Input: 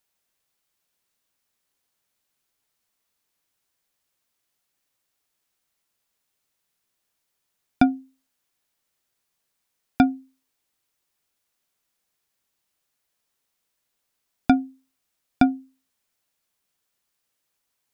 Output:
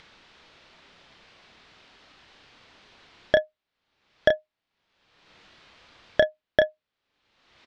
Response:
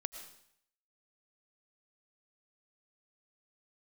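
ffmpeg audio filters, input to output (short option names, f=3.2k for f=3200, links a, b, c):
-filter_complex "[0:a]asplit=2[a][b];[b]aecho=0:1:71:0.473[c];[a][c]amix=inputs=2:normalize=0,asetrate=103194,aresample=44100,lowpass=f=4.1k:w=0.5412,lowpass=f=4.1k:w=1.3066,acompressor=mode=upward:threshold=-30dB:ratio=2.5"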